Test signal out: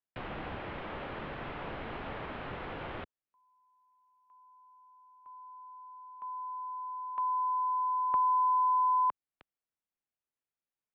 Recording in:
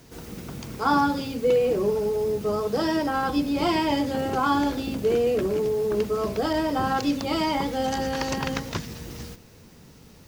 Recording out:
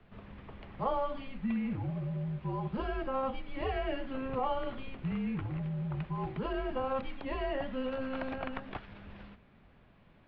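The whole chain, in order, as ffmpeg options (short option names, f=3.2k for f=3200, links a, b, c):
-filter_complex "[0:a]acrossover=split=780|1700[a][b][c];[a]acompressor=threshold=-31dB:ratio=4[d];[b]acompressor=threshold=-27dB:ratio=4[e];[c]acompressor=threshold=-34dB:ratio=4[f];[d][e][f]amix=inputs=3:normalize=0,highpass=f=260:t=q:w=0.5412,highpass=f=260:t=q:w=1.307,lowpass=f=3.5k:t=q:w=0.5176,lowpass=f=3.5k:t=q:w=0.7071,lowpass=f=3.5k:t=q:w=1.932,afreqshift=-270,highshelf=f=2.4k:g=-8,volume=-4.5dB"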